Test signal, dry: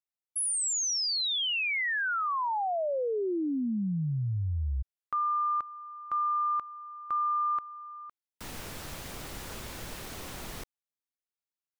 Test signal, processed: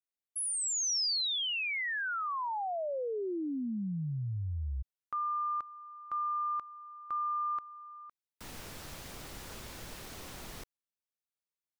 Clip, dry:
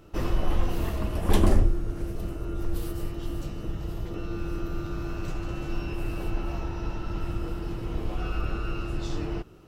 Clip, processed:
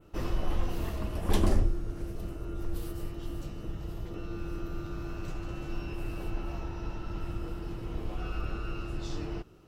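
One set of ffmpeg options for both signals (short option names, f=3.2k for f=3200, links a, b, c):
-af "adynamicequalizer=threshold=0.00398:dfrequency=5100:dqfactor=1.3:tfrequency=5100:tqfactor=1.3:attack=5:release=100:ratio=0.375:range=2:mode=boostabove:tftype=bell,volume=-5dB"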